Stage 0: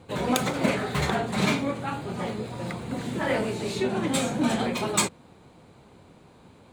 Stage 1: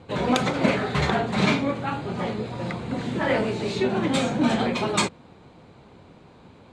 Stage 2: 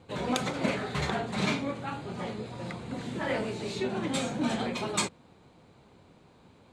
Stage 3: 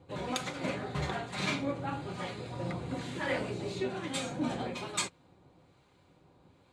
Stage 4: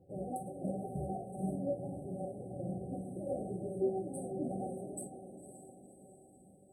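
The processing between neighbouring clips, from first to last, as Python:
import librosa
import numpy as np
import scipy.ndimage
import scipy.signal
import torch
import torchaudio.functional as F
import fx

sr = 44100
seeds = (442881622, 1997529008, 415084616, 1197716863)

y1 = scipy.signal.sosfilt(scipy.signal.butter(2, 5400.0, 'lowpass', fs=sr, output='sos'), x)
y1 = y1 * librosa.db_to_amplitude(3.0)
y2 = fx.high_shelf(y1, sr, hz=6900.0, db=10.5)
y2 = y2 * librosa.db_to_amplitude(-8.0)
y3 = fx.notch_comb(y2, sr, f0_hz=220.0)
y3 = fx.rider(y3, sr, range_db=10, speed_s=2.0)
y3 = fx.harmonic_tremolo(y3, sr, hz=1.1, depth_pct=50, crossover_hz=1100.0)
y4 = fx.brickwall_bandstop(y3, sr, low_hz=800.0, high_hz=8000.0)
y4 = fx.comb_fb(y4, sr, f0_hz=190.0, decay_s=0.19, harmonics='all', damping=0.0, mix_pct=80)
y4 = fx.echo_diffused(y4, sr, ms=538, feedback_pct=51, wet_db=-10.5)
y4 = y4 * librosa.db_to_amplitude(5.0)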